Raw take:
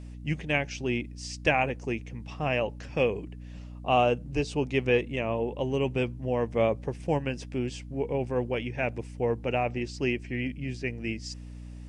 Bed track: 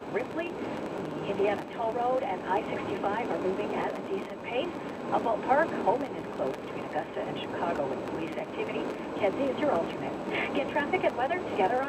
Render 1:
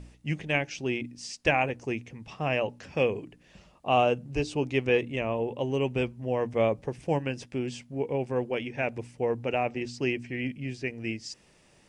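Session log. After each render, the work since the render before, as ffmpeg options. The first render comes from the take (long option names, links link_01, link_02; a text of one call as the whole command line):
ffmpeg -i in.wav -af "bandreject=frequency=60:width_type=h:width=4,bandreject=frequency=120:width_type=h:width=4,bandreject=frequency=180:width_type=h:width=4,bandreject=frequency=240:width_type=h:width=4,bandreject=frequency=300:width_type=h:width=4" out.wav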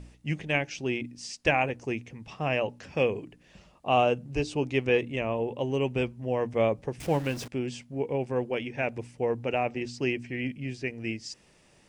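ffmpeg -i in.wav -filter_complex "[0:a]asettb=1/sr,asplit=3[link_01][link_02][link_03];[link_01]atrim=end=7.004[link_04];[link_02]atrim=start=7:end=7.48,asetpts=PTS-STARTPTS,afade=type=in:duration=0.004:curve=qsin,afade=type=out:start_time=0.476:duration=0.004:curve=qsin,aeval=exprs='val(0)+0.5*0.015*sgn(val(0))':channel_layout=same[link_05];[link_03]atrim=start=7.476[link_06];[link_04][link_05]acrossfade=duration=0.004:curve1=hsin:curve2=qsin[link_07];[link_07][link_06]acrossfade=duration=0.004:curve1=qsin:curve2=hsin" out.wav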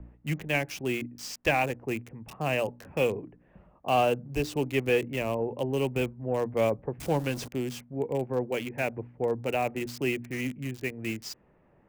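ffmpeg -i in.wav -filter_complex "[0:a]acrossover=split=170|520|1700[link_01][link_02][link_03][link_04];[link_04]acrusher=bits=6:mix=0:aa=0.000001[link_05];[link_01][link_02][link_03][link_05]amix=inputs=4:normalize=0,asoftclip=type=tanh:threshold=-12.5dB" out.wav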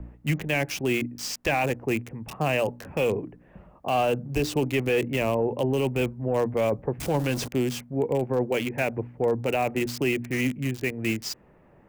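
ffmpeg -i in.wav -af "acontrast=68,alimiter=limit=-16dB:level=0:latency=1:release=16" out.wav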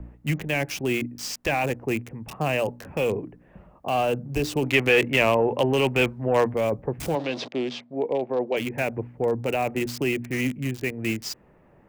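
ffmpeg -i in.wav -filter_complex "[0:a]asettb=1/sr,asplit=3[link_01][link_02][link_03];[link_01]atrim=end=4.644[link_04];[link_02]atrim=start=4.64:end=6.53,asetpts=PTS-STARTPTS,afade=type=in:duration=0.004:curve=qsin,afade=type=out:start_time=1.886:duration=0.004:curve=qsin,equalizer=frequency=2100:width=0.33:gain=10[link_05];[link_03]atrim=start=6.526[link_06];[link_04][link_05]acrossfade=duration=0.004:curve1=hsin:curve2=qsin[link_07];[link_07][link_06]acrossfade=duration=0.004:curve1=qsin:curve2=hsin,asplit=3[link_08][link_09][link_10];[link_08]afade=type=out:start_time=7.14:duration=0.02[link_11];[link_09]highpass=270,equalizer=frequency=650:width_type=q:width=4:gain=5,equalizer=frequency=1500:width_type=q:width=4:gain=-5,equalizer=frequency=3700:width_type=q:width=4:gain=6,lowpass=frequency=4800:width=0.5412,lowpass=frequency=4800:width=1.3066,afade=type=in:start_time=7.14:duration=0.02,afade=type=out:start_time=8.56:duration=0.02[link_12];[link_10]afade=type=in:start_time=8.56:duration=0.02[link_13];[link_11][link_12][link_13]amix=inputs=3:normalize=0" out.wav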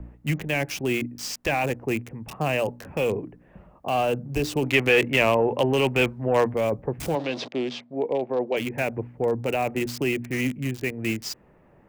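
ffmpeg -i in.wav -af anull out.wav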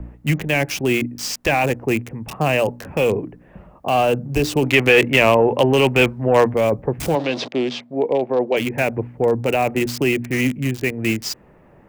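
ffmpeg -i in.wav -af "volume=6.5dB,alimiter=limit=-2dB:level=0:latency=1" out.wav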